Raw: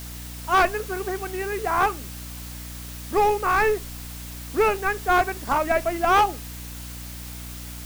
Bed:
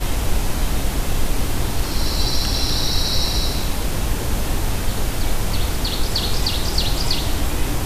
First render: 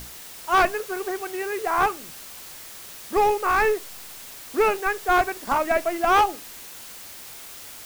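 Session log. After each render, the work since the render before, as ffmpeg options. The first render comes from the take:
-af "bandreject=f=60:t=h:w=6,bandreject=f=120:t=h:w=6,bandreject=f=180:t=h:w=6,bandreject=f=240:t=h:w=6,bandreject=f=300:t=h:w=6"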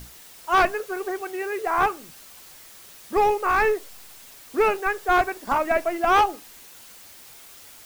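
-af "afftdn=nr=6:nf=-41"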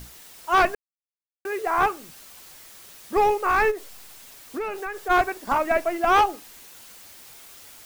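-filter_complex "[0:a]asplit=3[a][b][c];[a]afade=t=out:st=3.7:d=0.02[d];[b]acompressor=threshold=-27dB:ratio=6:attack=3.2:release=140:knee=1:detection=peak,afade=t=in:st=3.7:d=0.02,afade=t=out:st=5.09:d=0.02[e];[c]afade=t=in:st=5.09:d=0.02[f];[d][e][f]amix=inputs=3:normalize=0,asplit=3[g][h][i];[g]atrim=end=0.75,asetpts=PTS-STARTPTS,afade=t=out:st=0.746:d=0.004:c=hsin[j];[h]atrim=start=0.75:end=1.45,asetpts=PTS-STARTPTS,volume=0[k];[i]atrim=start=1.45,asetpts=PTS-STARTPTS,afade=t=in:d=0.004:c=hsin[l];[j][k][l]concat=n=3:v=0:a=1"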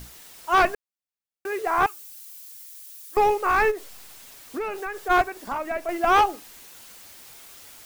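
-filter_complex "[0:a]asettb=1/sr,asplit=3[a][b][c];[a]atrim=end=1.864[d];[b]atrim=start=1.86:end=3.17,asetpts=PTS-STARTPTS,afade=t=in:d=0.004:c=qsin,afade=t=out:st=1.306:d=0.004:c=qsin,aderivative[e];[c]atrim=start=3.166[f];[d][e]acrossfade=d=0.004:c1=hsin:c2=qsin[g];[g][f]acrossfade=d=0.004:c1=qsin:c2=hsin,asettb=1/sr,asplit=3[h][i][j];[h]atrim=end=5.224[k];[i]atrim=start=5.22:end=5.89,asetpts=PTS-STARTPTS,afade=t=in:d=0.004:c=qsin,afade=t=out:st=0.666:d=0.004:c=qsin,acompressor=threshold=-37dB:ratio=1.5:attack=3.2:release=140:knee=1:detection=peak[l];[j]atrim=start=5.886[m];[k][l]acrossfade=d=0.004:c1=hsin:c2=qsin[n];[n][m]acrossfade=d=0.004:c1=qsin:c2=hsin"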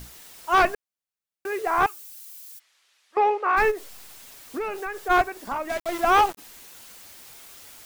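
-filter_complex "[0:a]asplit=3[a][b][c];[a]afade=t=out:st=2.58:d=0.02[d];[b]highpass=380,lowpass=2.7k,afade=t=in:st=2.58:d=0.02,afade=t=out:st=3.56:d=0.02[e];[c]afade=t=in:st=3.56:d=0.02[f];[d][e][f]amix=inputs=3:normalize=0,asplit=3[g][h][i];[g]afade=t=out:st=5.68:d=0.02[j];[h]aeval=exprs='val(0)*gte(abs(val(0)),0.0299)':c=same,afade=t=in:st=5.68:d=0.02,afade=t=out:st=6.37:d=0.02[k];[i]afade=t=in:st=6.37:d=0.02[l];[j][k][l]amix=inputs=3:normalize=0"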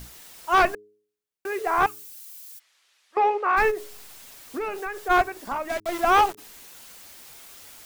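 -af "bandreject=f=104.8:t=h:w=4,bandreject=f=209.6:t=h:w=4,bandreject=f=314.4:t=h:w=4,bandreject=f=419.2:t=h:w=4"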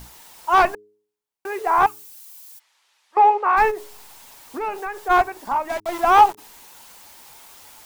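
-af "equalizer=f=900:t=o:w=0.46:g=10.5"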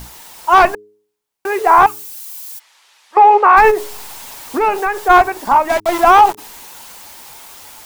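-af "dynaudnorm=f=410:g=9:m=11.5dB,alimiter=level_in=8dB:limit=-1dB:release=50:level=0:latency=1"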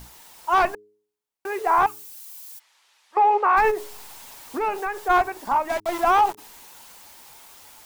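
-af "volume=-10dB"

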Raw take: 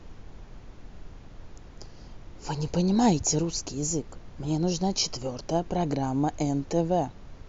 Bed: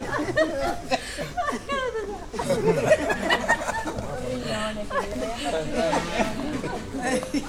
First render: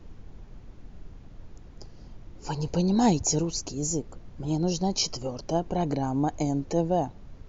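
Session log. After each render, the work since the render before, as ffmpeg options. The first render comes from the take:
-af "afftdn=nr=6:nf=-47"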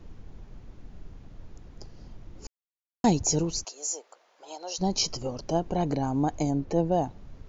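-filter_complex "[0:a]asplit=3[a][b][c];[a]afade=t=out:st=3.63:d=0.02[d];[b]highpass=f=590:w=0.5412,highpass=f=590:w=1.3066,afade=t=in:st=3.63:d=0.02,afade=t=out:st=4.78:d=0.02[e];[c]afade=t=in:st=4.78:d=0.02[f];[d][e][f]amix=inputs=3:normalize=0,asettb=1/sr,asplit=3[g][h][i];[g]atrim=end=6.504[j];[h]atrim=start=6.5:end=6.92,asetpts=PTS-STARTPTS,afade=t=in:d=0.004:c=qsin,afade=t=out:st=0.416:d=0.004:c=qsin,aemphasis=mode=reproduction:type=50fm[k];[i]atrim=start=6.916[l];[j][k]acrossfade=d=0.004:c1=hsin:c2=qsin[m];[m][l]acrossfade=d=0.004:c1=qsin:c2=hsin,asplit=3[n][o][p];[n]atrim=end=2.47,asetpts=PTS-STARTPTS,afade=t=out:st=2.466:d=0.004:c=hsin[q];[o]atrim=start=2.47:end=3.04,asetpts=PTS-STARTPTS,volume=0[r];[p]atrim=start=3.04,asetpts=PTS-STARTPTS,afade=t=in:d=0.004:c=hsin[s];[q][r][s]concat=n=3:v=0:a=1"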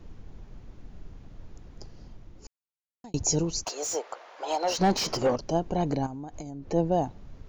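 -filter_complex "[0:a]asettb=1/sr,asplit=3[a][b][c];[a]atrim=end=3.664[d];[b]atrim=start=3.66:end=5.36,asetpts=PTS-STARTPTS,afade=t=in:d=0.004:c=qsin,afade=t=out:st=1.696:d=0.004:c=qsin,asplit=2[e][f];[f]highpass=f=720:p=1,volume=25dB,asoftclip=type=tanh:threshold=-12.5dB[g];[e][g]amix=inputs=2:normalize=0,lowpass=f=1.5k:p=1,volume=-6dB[h];[c]atrim=start=5.356[i];[d][h]acrossfade=d=0.004:c1=hsin:c2=qsin[j];[j][i]acrossfade=d=0.004:c1=qsin:c2=hsin,asettb=1/sr,asplit=3[k][l][m];[k]atrim=end=6.064[n];[l]atrim=start=6.06:end=6.68,asetpts=PTS-STARTPTS,afade=t=in:d=0.004:c=qsin,afade=t=out:st=0.616:d=0.004:c=qsin,acompressor=threshold=-34dB:ratio=16:attack=3.2:release=140:knee=1:detection=peak[o];[m]atrim=start=6.676[p];[n][o]acrossfade=d=0.004:c1=hsin:c2=qsin[q];[q][p]acrossfade=d=0.004:c1=qsin:c2=hsin,asplit=2[r][s];[r]atrim=end=3.14,asetpts=PTS-STARTPTS,afade=t=out:st=1.92:d=1.22[t];[s]atrim=start=3.14,asetpts=PTS-STARTPTS,afade=t=in:d=0.004:c=hsin[u];[t][u]concat=n=2:v=0:a=1"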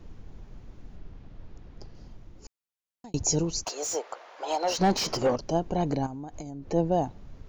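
-filter_complex "[0:a]asettb=1/sr,asplit=3[a][b][c];[a]atrim=end=0.964[d];[b]atrim=start=0.96:end=1.95,asetpts=PTS-STARTPTS,afade=t=in:d=0.004:c=qsin,afade=t=out:st=0.986:d=0.004:c=qsin,lowpass=4.9k[e];[c]atrim=start=1.946[f];[d][e]acrossfade=d=0.004:c1=hsin:c2=qsin[g];[g][f]acrossfade=d=0.004:c1=qsin:c2=hsin"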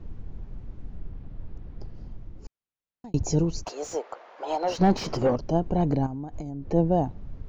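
-af "lowpass=f=2.3k:p=1,lowshelf=f=260:g=7.5"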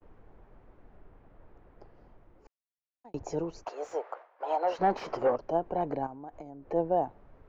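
-filter_complex "[0:a]agate=range=-33dB:threshold=-39dB:ratio=3:detection=peak,acrossover=split=400 2300:gain=0.112 1 0.141[a][b][c];[a][b][c]amix=inputs=3:normalize=0"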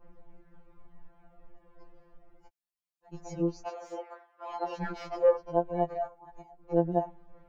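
-af "aphaser=in_gain=1:out_gain=1:delay=2:decay=0.38:speed=0.27:type=triangular,afftfilt=real='re*2.83*eq(mod(b,8),0)':imag='im*2.83*eq(mod(b,8),0)':win_size=2048:overlap=0.75"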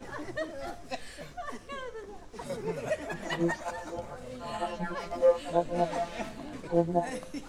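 -filter_complex "[1:a]volume=-13dB[a];[0:a][a]amix=inputs=2:normalize=0"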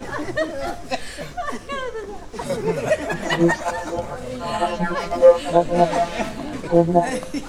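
-af "volume=12dB,alimiter=limit=-2dB:level=0:latency=1"

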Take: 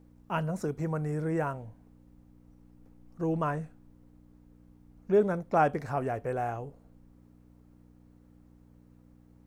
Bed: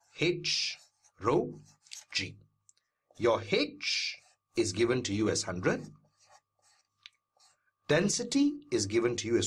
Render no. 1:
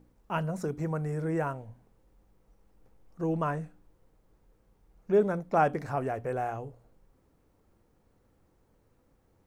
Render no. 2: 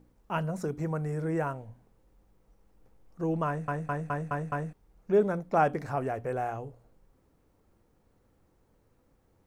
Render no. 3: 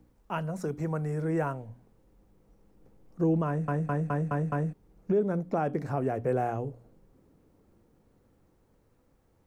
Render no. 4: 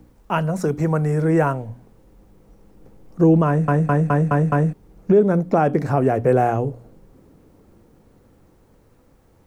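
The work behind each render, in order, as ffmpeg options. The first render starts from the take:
-af "bandreject=f=60:t=h:w=4,bandreject=f=120:t=h:w=4,bandreject=f=180:t=h:w=4,bandreject=f=240:t=h:w=4,bandreject=f=300:t=h:w=4"
-filter_complex "[0:a]asplit=7[a][b][c][d][e][f][g];[a]atrim=end=3.682[h];[b]atrim=start=3.468:end=3.682[i];[c]atrim=start=3.468:end=3.682[j];[d]atrim=start=3.468:end=3.682[k];[e]atrim=start=3.468:end=3.682[l];[f]atrim=start=3.468:end=3.682[m];[g]atrim=start=4.728[n];[h][i]acrossfade=d=0.004:c1=hsin:c2=hsin[o];[o][j]acrossfade=d=0.004:c1=hsin:c2=hsin[p];[p][k]acrossfade=d=0.004:c1=hsin:c2=hsin[q];[q][l]acrossfade=d=0.004:c1=hsin:c2=hsin[r];[r][m]acrossfade=d=0.004:c1=hsin:c2=hsin[s];[s][n]acrossfade=d=0.004:c1=hsin:c2=hsin"
-filter_complex "[0:a]acrossover=split=110|480|3800[a][b][c][d];[b]dynaudnorm=f=460:g=9:m=9dB[e];[a][e][c][d]amix=inputs=4:normalize=0,alimiter=limit=-18dB:level=0:latency=1:release=346"
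-af "volume=11.5dB"

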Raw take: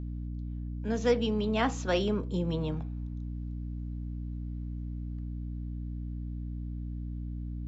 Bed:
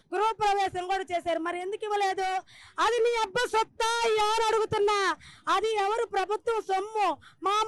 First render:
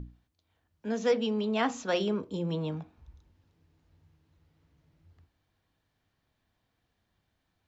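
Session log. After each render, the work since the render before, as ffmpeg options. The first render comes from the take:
-af "bandreject=f=60:t=h:w=6,bandreject=f=120:t=h:w=6,bandreject=f=180:t=h:w=6,bandreject=f=240:t=h:w=6,bandreject=f=300:t=h:w=6,bandreject=f=360:t=h:w=6"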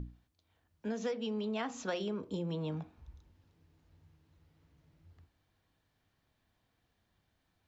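-af "acompressor=threshold=-33dB:ratio=8"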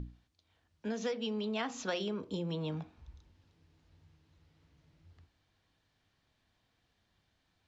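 -af "lowpass=5.2k,highshelf=f=3.3k:g=10"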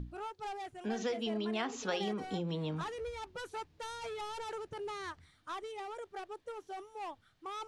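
-filter_complex "[1:a]volume=-16.5dB[a];[0:a][a]amix=inputs=2:normalize=0"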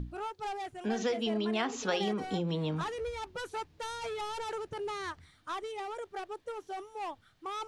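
-af "volume=4dB"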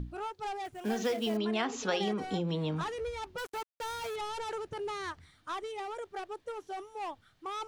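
-filter_complex "[0:a]asettb=1/sr,asplit=3[a][b][c];[a]atrim=end=0.654[d];[b]atrim=start=0.65:end=1.37,asetpts=PTS-STARTPTS,afade=t=in:d=0.004:c=qsin,afade=t=out:st=0.716:d=0.004:c=qsin,acrusher=bits=5:mode=log:mix=0:aa=0.000001[e];[c]atrim=start=1.366[f];[d][e]acrossfade=d=0.004:c1=hsin:c2=qsin[g];[g][f]acrossfade=d=0.004:c1=qsin:c2=hsin,asettb=1/sr,asplit=3[h][i][j];[h]atrim=end=3.384[k];[i]atrim=start=3.38:end=4.16,asetpts=PTS-STARTPTS,afade=t=in:d=0.004:c=qsin,afade=t=out:st=0.776:d=0.004:c=qsin,acrusher=bits=6:mix=0:aa=0.5[l];[j]atrim=start=4.156[m];[k][l]acrossfade=d=0.004:c1=hsin:c2=qsin[n];[n][m]acrossfade=d=0.004:c1=qsin:c2=hsin"

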